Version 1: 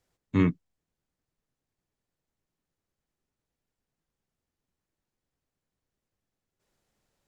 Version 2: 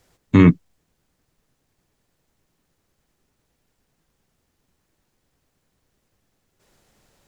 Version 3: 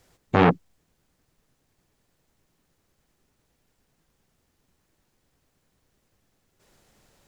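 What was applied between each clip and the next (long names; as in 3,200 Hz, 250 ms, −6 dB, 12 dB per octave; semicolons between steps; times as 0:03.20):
boost into a limiter +16.5 dB; level −1 dB
saturating transformer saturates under 960 Hz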